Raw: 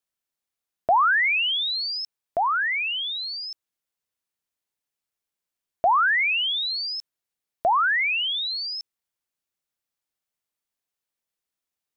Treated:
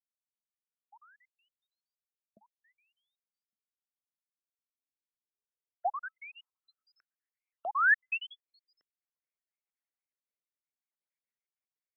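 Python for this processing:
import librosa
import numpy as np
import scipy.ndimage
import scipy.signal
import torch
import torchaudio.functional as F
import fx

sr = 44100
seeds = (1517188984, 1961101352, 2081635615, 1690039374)

y = fx.spec_dropout(x, sr, seeds[0], share_pct=49)
y = fx.small_body(y, sr, hz=(260.0, 1300.0), ring_ms=95, db=17, at=(6.05, 6.99))
y = fx.filter_sweep_bandpass(y, sr, from_hz=1900.0, to_hz=590.0, start_s=7.84, end_s=8.55, q=0.8)
y = fx.rotary(y, sr, hz=0.6)
y = fx.filter_sweep_lowpass(y, sr, from_hz=210.0, to_hz=2200.0, start_s=4.54, end_s=7.48, q=6.6)
y = y * 10.0 ** (-6.0 / 20.0)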